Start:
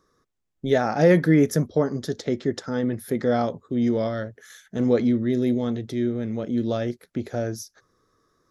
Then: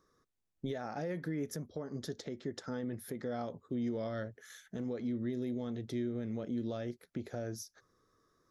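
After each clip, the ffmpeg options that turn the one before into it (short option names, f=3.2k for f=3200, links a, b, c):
-af "acompressor=threshold=-23dB:ratio=6,alimiter=limit=-22.5dB:level=0:latency=1:release=445,volume=-6dB"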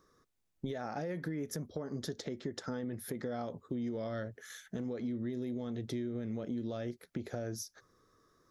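-af "acompressor=threshold=-38dB:ratio=6,volume=4dB"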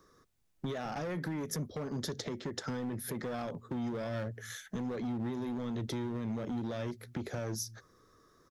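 -filter_complex "[0:a]acrossover=split=150|2200[a][b][c];[a]aecho=1:1:212:0.316[d];[b]asoftclip=type=hard:threshold=-40dB[e];[d][e][c]amix=inputs=3:normalize=0,volume=4.5dB"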